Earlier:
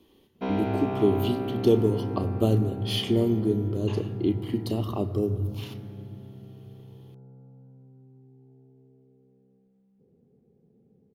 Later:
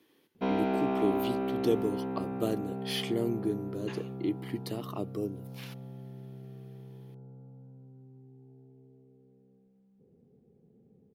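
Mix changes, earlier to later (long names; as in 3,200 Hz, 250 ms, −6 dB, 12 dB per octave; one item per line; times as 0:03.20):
speech: add high-pass filter 270 Hz 12 dB per octave
reverb: off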